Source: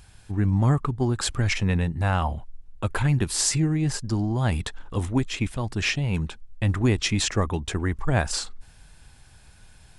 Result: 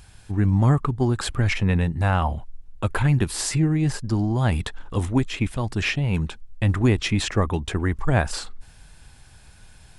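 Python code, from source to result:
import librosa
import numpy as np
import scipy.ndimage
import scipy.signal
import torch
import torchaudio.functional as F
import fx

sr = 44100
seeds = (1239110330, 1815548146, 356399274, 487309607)

y = fx.dynamic_eq(x, sr, hz=6400.0, q=0.85, threshold_db=-43.0, ratio=4.0, max_db=-8)
y = y * 10.0 ** (2.5 / 20.0)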